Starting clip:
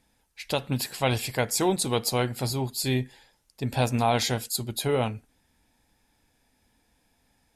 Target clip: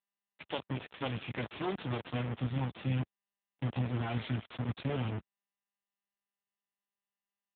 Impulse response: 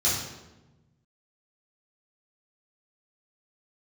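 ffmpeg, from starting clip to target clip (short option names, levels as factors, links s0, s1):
-af "asubboost=boost=7.5:cutoff=110,acompressor=threshold=0.0447:ratio=3,acrusher=bits=3:dc=4:mix=0:aa=0.000001,volume=1.12" -ar 8000 -c:a libopencore_amrnb -b:a 6700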